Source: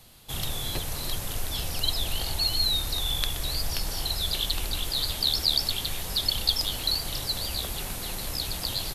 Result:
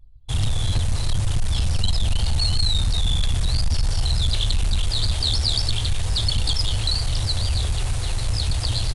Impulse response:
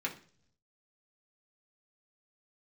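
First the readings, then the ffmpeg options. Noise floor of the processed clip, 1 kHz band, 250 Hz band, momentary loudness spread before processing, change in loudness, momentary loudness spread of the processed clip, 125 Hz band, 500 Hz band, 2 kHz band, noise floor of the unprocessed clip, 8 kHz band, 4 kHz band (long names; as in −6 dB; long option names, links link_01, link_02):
−26 dBFS, +2.0 dB, +6.0 dB, 8 LU, +4.0 dB, 4 LU, +14.5 dB, +1.5 dB, +2.0 dB, −35 dBFS, +1.5 dB, +1.5 dB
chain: -af "anlmdn=0.1,lowshelf=frequency=140:width_type=q:width=3:gain=9.5,bandreject=frequency=272.3:width_type=h:width=4,bandreject=frequency=544.6:width_type=h:width=4,bandreject=frequency=816.9:width_type=h:width=4,bandreject=frequency=1089.2:width_type=h:width=4,bandreject=frequency=1361.5:width_type=h:width=4,bandreject=frequency=1633.8:width_type=h:width=4,bandreject=frequency=1906.1:width_type=h:width=4,bandreject=frequency=2178.4:width_type=h:width=4,bandreject=frequency=2450.7:width_type=h:width=4,bandreject=frequency=2723:width_type=h:width=4,bandreject=frequency=2995.3:width_type=h:width=4,bandreject=frequency=3267.6:width_type=h:width=4,bandreject=frequency=3539.9:width_type=h:width=4,bandreject=frequency=3812.2:width_type=h:width=4,bandreject=frequency=4084.5:width_type=h:width=4,bandreject=frequency=4356.8:width_type=h:width=4,bandreject=frequency=4629.1:width_type=h:width=4,bandreject=frequency=4901.4:width_type=h:width=4,bandreject=frequency=5173.7:width_type=h:width=4,bandreject=frequency=5446:width_type=h:width=4,bandreject=frequency=5718.3:width_type=h:width=4,bandreject=frequency=5990.6:width_type=h:width=4,bandreject=frequency=6262.9:width_type=h:width=4,bandreject=frequency=6535.2:width_type=h:width=4,bandreject=frequency=6807.5:width_type=h:width=4,bandreject=frequency=7079.8:width_type=h:width=4,bandreject=frequency=7352.1:width_type=h:width=4,bandreject=frequency=7624.4:width_type=h:width=4,bandreject=frequency=7896.7:width_type=h:width=4,areverse,acompressor=mode=upward:threshold=-37dB:ratio=2.5,areverse,asoftclip=type=tanh:threshold=-19.5dB,aresample=22050,aresample=44100,volume=5dB"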